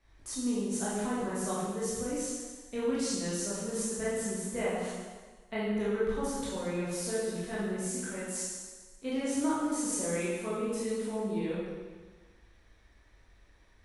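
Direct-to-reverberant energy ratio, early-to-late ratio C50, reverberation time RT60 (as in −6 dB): −9.0 dB, −2.0 dB, 1.4 s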